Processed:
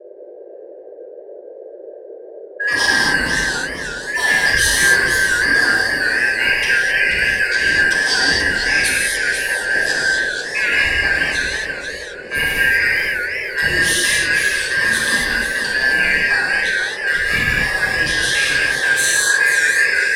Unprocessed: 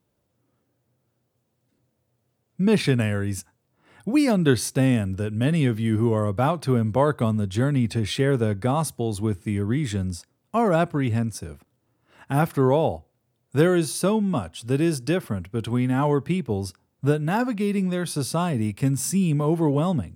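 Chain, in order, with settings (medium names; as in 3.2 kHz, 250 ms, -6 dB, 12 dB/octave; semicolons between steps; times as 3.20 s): four frequency bands reordered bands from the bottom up 2143; level-controlled noise filter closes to 1.2 kHz, open at -19.5 dBFS; graphic EQ 125/2000/4000 Hz -4/-12/+7 dB; compression, threshold -25 dBFS, peak gain reduction 6 dB; phase dispersion lows, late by 62 ms, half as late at 310 Hz; band noise 370–600 Hz -50 dBFS; gated-style reverb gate 290 ms flat, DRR -5 dB; modulated delay 486 ms, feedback 33%, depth 162 cents, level -7 dB; trim +8 dB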